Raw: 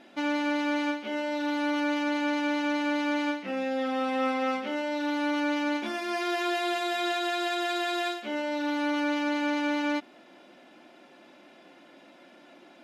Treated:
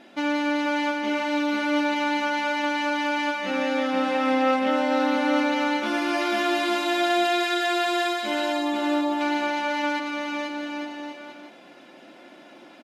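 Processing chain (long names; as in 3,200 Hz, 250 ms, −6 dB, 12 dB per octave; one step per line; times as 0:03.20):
0:08.52–0:09.21: linear-phase brick-wall low-pass 1,400 Hz
bouncing-ball delay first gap 490 ms, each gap 0.75×, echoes 5
level +3.5 dB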